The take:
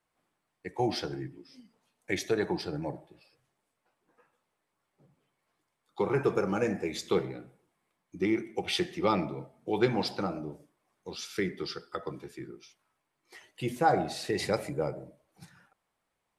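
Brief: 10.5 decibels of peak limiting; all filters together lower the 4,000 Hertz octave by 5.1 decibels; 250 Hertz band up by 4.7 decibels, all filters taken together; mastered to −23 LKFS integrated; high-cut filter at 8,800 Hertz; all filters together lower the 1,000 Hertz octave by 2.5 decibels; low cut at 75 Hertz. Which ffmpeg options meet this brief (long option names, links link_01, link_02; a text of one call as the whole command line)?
ffmpeg -i in.wav -af "highpass=75,lowpass=8800,equalizer=frequency=250:width_type=o:gain=7.5,equalizer=frequency=1000:width_type=o:gain=-4,equalizer=frequency=4000:width_type=o:gain=-6,volume=10.5dB,alimiter=limit=-10.5dB:level=0:latency=1" out.wav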